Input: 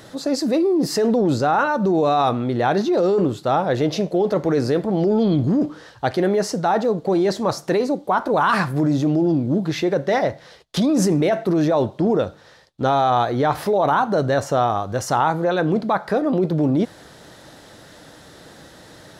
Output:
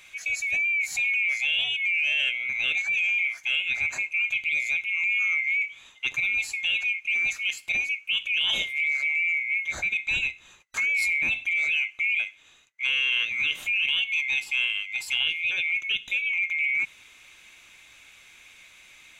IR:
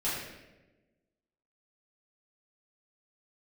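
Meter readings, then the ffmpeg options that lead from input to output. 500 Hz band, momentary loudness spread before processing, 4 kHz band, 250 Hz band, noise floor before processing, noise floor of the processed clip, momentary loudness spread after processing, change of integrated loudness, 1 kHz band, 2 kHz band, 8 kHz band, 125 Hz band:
below −35 dB, 4 LU, +6.5 dB, below −35 dB, −46 dBFS, −54 dBFS, 4 LU, −4.0 dB, −30.5 dB, +9.0 dB, −4.5 dB, below −30 dB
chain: -af "afftfilt=real='real(if(lt(b,920),b+92*(1-2*mod(floor(b/92),2)),b),0)':imag='imag(if(lt(b,920),b+92*(1-2*mod(floor(b/92),2)),b),0)':win_size=2048:overlap=0.75,volume=-7.5dB"

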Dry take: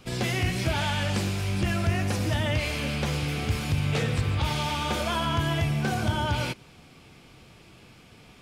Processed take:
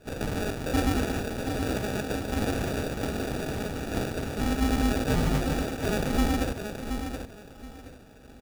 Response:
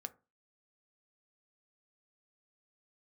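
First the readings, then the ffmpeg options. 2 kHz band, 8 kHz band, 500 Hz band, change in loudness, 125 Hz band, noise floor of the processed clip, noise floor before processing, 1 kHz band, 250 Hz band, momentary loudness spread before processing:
−4.0 dB, −1.0 dB, +2.0 dB, −2.0 dB, −5.5 dB, −48 dBFS, −53 dBFS, −3.0 dB, +2.5 dB, 2 LU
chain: -filter_complex "[0:a]highpass=frequency=920:width_type=q:width=2.2,aecho=1:1:5.7:0.34,aeval=exprs='val(0)*sin(2*PI*100*n/s)':channel_layout=same,asplit=2[link_01][link_02];[link_02]asoftclip=type=hard:threshold=-28.5dB,volume=-5.5dB[link_03];[link_01][link_03]amix=inputs=2:normalize=0,acrusher=samples=42:mix=1:aa=0.000001,aecho=1:1:725|1450|2175:0.422|0.101|0.0243,asplit=2[link_04][link_05];[1:a]atrim=start_sample=2205[link_06];[link_05][link_06]afir=irnorm=-1:irlink=0,volume=0dB[link_07];[link_04][link_07]amix=inputs=2:normalize=0,volume=-3.5dB"

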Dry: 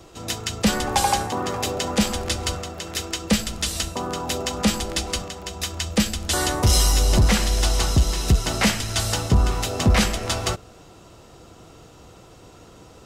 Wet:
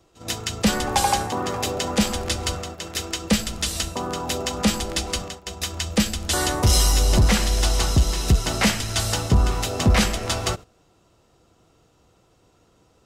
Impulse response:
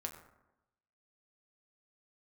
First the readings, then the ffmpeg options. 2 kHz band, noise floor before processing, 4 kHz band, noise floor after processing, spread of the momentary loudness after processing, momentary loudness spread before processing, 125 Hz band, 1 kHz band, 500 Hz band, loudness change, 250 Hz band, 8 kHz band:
0.0 dB, −48 dBFS, 0.0 dB, −61 dBFS, 10 LU, 10 LU, 0.0 dB, 0.0 dB, 0.0 dB, 0.0 dB, 0.0 dB, 0.0 dB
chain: -af "agate=range=-13dB:threshold=-34dB:ratio=16:detection=peak"

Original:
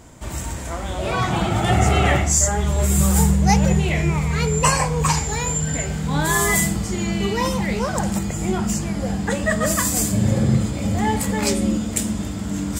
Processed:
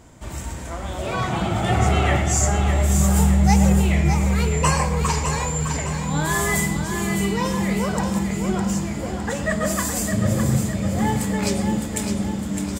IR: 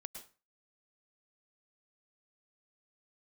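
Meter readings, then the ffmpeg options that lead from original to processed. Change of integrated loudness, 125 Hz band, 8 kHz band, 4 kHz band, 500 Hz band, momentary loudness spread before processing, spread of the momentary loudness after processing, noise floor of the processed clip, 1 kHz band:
−1.0 dB, −0.5 dB, −4.0 dB, −2.5 dB, −1.5 dB, 8 LU, 9 LU, −31 dBFS, −1.5 dB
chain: -filter_complex "[0:a]aecho=1:1:609|1218|1827|2436|3045|3654:0.447|0.214|0.103|0.0494|0.0237|0.0114,asplit=2[link_01][link_02];[1:a]atrim=start_sample=2205,highshelf=frequency=7600:gain=-10[link_03];[link_02][link_03]afir=irnorm=-1:irlink=0,volume=3.5dB[link_04];[link_01][link_04]amix=inputs=2:normalize=0,volume=-8dB"

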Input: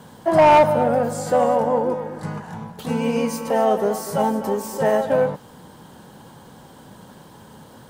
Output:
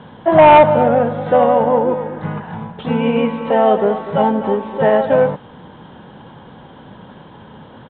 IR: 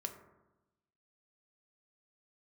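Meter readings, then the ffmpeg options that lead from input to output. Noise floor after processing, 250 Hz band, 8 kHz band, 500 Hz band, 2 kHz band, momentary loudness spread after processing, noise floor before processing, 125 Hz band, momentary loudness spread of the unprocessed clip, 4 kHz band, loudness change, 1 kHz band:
−41 dBFS, +5.5 dB, below −40 dB, +5.5 dB, +5.5 dB, 17 LU, −46 dBFS, +5.5 dB, 17 LU, +4.0 dB, +5.5 dB, +5.5 dB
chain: -af "aresample=8000,aresample=44100,volume=5.5dB"

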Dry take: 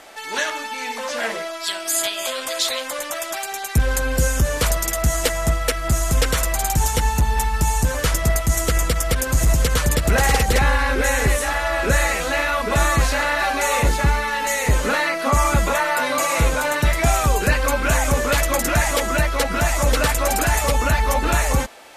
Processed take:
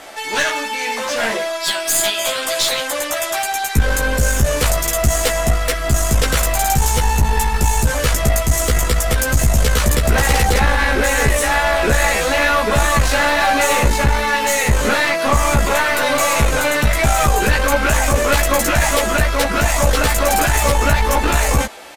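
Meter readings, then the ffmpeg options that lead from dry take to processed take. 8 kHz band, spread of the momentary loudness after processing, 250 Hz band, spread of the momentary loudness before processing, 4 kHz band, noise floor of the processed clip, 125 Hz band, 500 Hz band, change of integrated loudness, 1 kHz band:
+4.0 dB, 4 LU, +3.5 dB, 6 LU, +5.0 dB, −23 dBFS, +2.5 dB, +4.5 dB, +4.0 dB, +4.0 dB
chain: -filter_complex "[0:a]alimiter=limit=-11dB:level=0:latency=1:release=26,aeval=exprs='clip(val(0),-1,0.075)':channel_layout=same,asplit=2[link_01][link_02];[link_02]adelay=14,volume=-3dB[link_03];[link_01][link_03]amix=inputs=2:normalize=0,volume=5dB"

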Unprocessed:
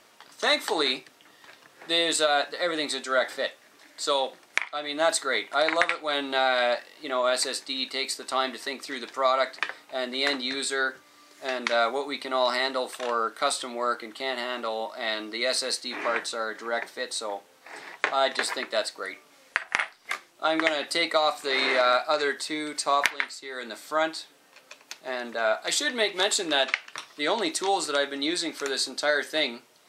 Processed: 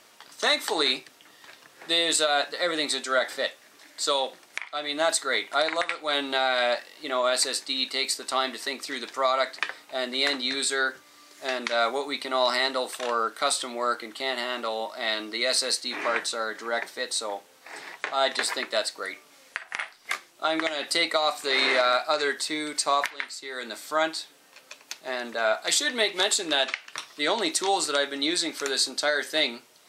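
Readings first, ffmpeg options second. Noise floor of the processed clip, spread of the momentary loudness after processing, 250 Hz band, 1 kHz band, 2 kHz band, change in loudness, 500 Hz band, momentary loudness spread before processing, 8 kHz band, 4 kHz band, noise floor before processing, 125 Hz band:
−56 dBFS, 11 LU, −0.5 dB, −0.5 dB, 0.0 dB, +0.5 dB, −0.5 dB, 10 LU, +3.0 dB, +2.0 dB, −57 dBFS, can't be measured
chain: -af "highshelf=frequency=2800:gain=4.5,alimiter=limit=-11dB:level=0:latency=1:release=199"

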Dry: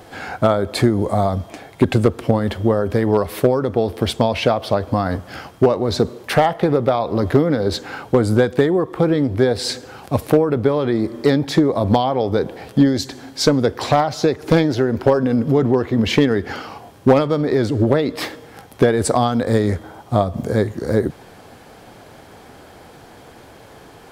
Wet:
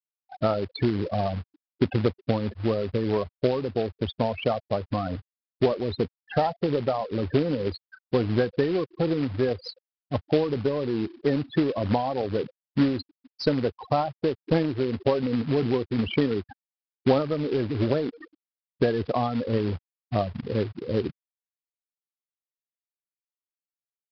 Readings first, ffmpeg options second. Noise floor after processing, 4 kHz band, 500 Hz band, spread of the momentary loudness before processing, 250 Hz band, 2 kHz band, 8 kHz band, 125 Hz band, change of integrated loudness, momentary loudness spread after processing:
below −85 dBFS, −10.5 dB, −8.5 dB, 7 LU, −8.5 dB, −10.5 dB, below −30 dB, −8.5 dB, −8.5 dB, 6 LU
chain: -af "afftfilt=real='re*gte(hypot(re,im),0.224)':imag='im*gte(hypot(re,im),0.224)':win_size=1024:overlap=0.75,acrusher=bits=3:mode=log:mix=0:aa=0.000001,aresample=11025,aresample=44100,volume=-8.5dB"

